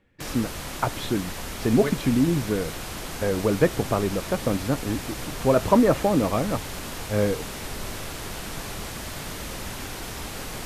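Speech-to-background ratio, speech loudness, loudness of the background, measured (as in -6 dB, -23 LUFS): 9.5 dB, -24.5 LUFS, -34.0 LUFS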